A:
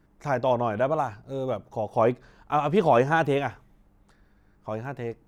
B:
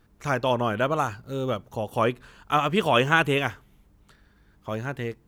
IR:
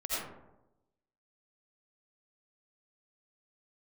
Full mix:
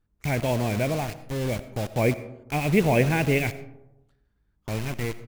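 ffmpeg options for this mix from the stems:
-filter_complex "[0:a]firequalizer=gain_entry='entry(220,0);entry(1300,-16);entry(2200,13);entry(3100,-2)':delay=0.05:min_phase=1,acrusher=bits=5:mix=0:aa=0.000001,volume=1,asplit=2[s0][s1];[s1]volume=0.126[s2];[1:a]volume=0.119[s3];[2:a]atrim=start_sample=2205[s4];[s2][s4]afir=irnorm=-1:irlink=0[s5];[s0][s3][s5]amix=inputs=3:normalize=0,lowshelf=f=120:g=11"

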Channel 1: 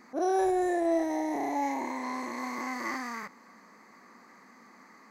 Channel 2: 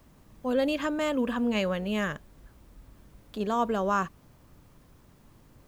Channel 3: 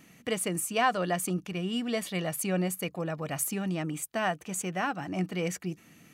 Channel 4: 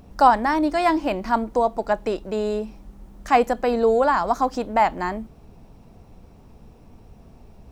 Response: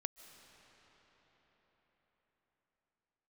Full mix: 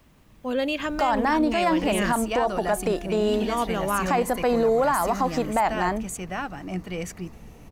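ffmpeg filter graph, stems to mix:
-filter_complex "[0:a]equalizer=f=12000:t=o:w=0.69:g=14,alimiter=level_in=1.68:limit=0.0631:level=0:latency=1:release=175,volume=0.596,adelay=2250,volume=0.596[s0];[1:a]equalizer=f=2600:t=o:w=1.2:g=6,volume=1[s1];[2:a]adelay=1550,volume=0.944[s2];[3:a]alimiter=limit=0.251:level=0:latency=1:release=98,adelay=800,volume=1.26[s3];[s0][s1][s2][s3]amix=inputs=4:normalize=0,alimiter=limit=0.211:level=0:latency=1:release=34"

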